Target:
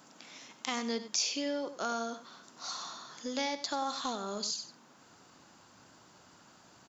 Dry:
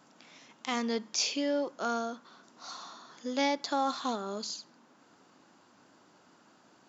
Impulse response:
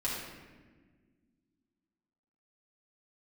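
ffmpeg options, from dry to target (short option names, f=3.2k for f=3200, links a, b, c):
-filter_complex "[0:a]highshelf=f=5.1k:g=8.5,acompressor=threshold=-36dB:ratio=2,asplit=2[a][b];[b]aecho=0:1:95:0.237[c];[a][c]amix=inputs=2:normalize=0,asubboost=boost=5:cutoff=110,volume=2dB"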